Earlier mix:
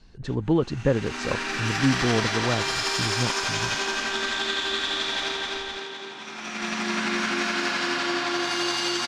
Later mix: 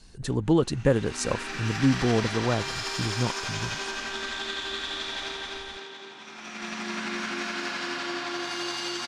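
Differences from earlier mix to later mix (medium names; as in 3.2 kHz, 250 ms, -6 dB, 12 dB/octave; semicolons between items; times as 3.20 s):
speech: remove distance through air 150 m; background -6.0 dB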